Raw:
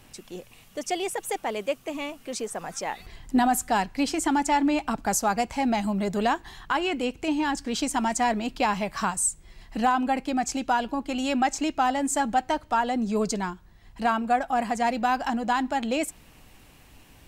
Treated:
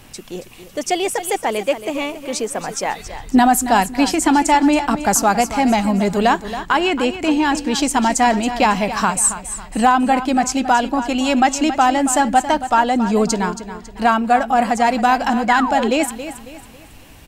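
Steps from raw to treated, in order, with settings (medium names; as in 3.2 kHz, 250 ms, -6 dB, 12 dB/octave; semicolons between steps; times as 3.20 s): feedback delay 275 ms, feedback 38%, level -12 dB; painted sound fall, 15.48–15.90 s, 360–2300 Hz -31 dBFS; trim +9 dB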